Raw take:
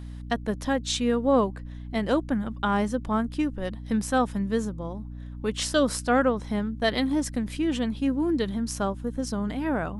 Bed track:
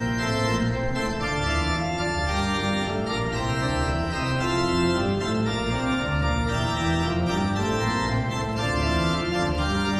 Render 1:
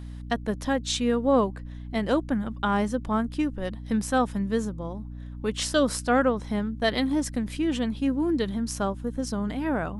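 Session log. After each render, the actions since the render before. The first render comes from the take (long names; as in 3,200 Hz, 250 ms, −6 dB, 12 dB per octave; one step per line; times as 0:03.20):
no processing that can be heard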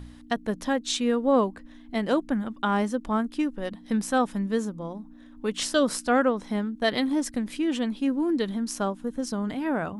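hum removal 60 Hz, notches 3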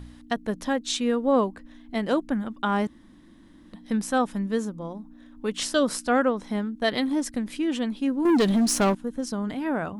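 0:02.87–0:03.73: fill with room tone
0:08.25–0:08.95: leveller curve on the samples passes 3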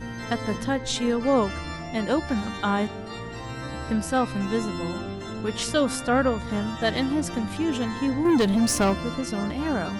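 mix in bed track −9.5 dB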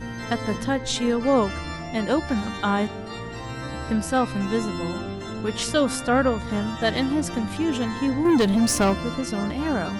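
level +1.5 dB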